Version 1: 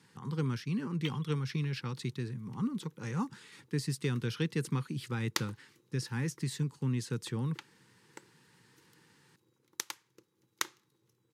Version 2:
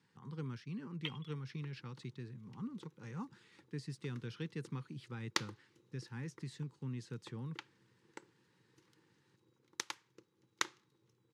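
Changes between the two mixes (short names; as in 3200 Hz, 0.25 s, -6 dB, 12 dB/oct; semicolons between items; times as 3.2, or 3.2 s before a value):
speech -10.0 dB; master: add air absorption 63 m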